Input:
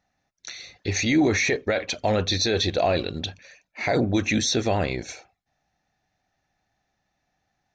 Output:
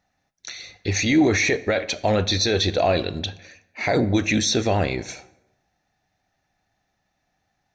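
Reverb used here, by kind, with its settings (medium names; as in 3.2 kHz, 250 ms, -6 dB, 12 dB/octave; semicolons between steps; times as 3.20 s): plate-style reverb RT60 0.95 s, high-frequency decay 0.65×, DRR 15 dB; trim +2 dB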